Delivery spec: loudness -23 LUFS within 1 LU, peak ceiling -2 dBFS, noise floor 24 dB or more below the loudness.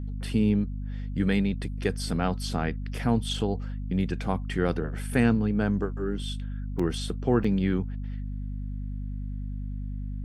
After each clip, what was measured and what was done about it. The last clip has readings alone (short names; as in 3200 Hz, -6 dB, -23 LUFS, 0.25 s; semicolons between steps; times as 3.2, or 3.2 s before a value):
dropouts 2; longest dropout 4.9 ms; hum 50 Hz; harmonics up to 250 Hz; hum level -30 dBFS; loudness -29.0 LUFS; peak -9.0 dBFS; loudness target -23.0 LUFS
-> interpolate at 6.79/7.44, 4.9 ms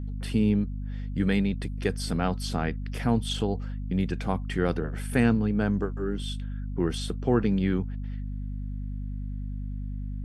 dropouts 0; hum 50 Hz; harmonics up to 250 Hz; hum level -30 dBFS
-> notches 50/100/150/200/250 Hz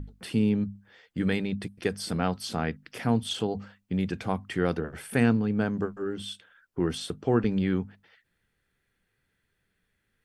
hum none; loudness -29.0 LUFS; peak -9.5 dBFS; loudness target -23.0 LUFS
-> gain +6 dB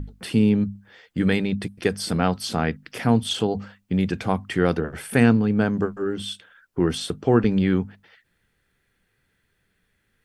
loudness -23.0 LUFS; peak -3.5 dBFS; noise floor -71 dBFS